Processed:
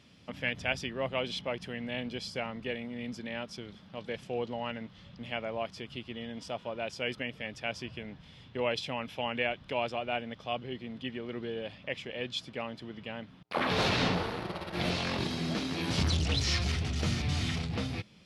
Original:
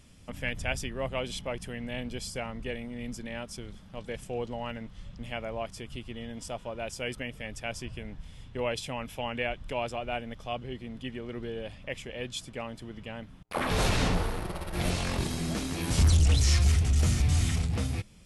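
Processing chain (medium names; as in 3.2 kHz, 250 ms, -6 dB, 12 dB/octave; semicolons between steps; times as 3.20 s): high-pass 130 Hz 12 dB/octave; resonant high shelf 6.1 kHz -11.5 dB, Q 1.5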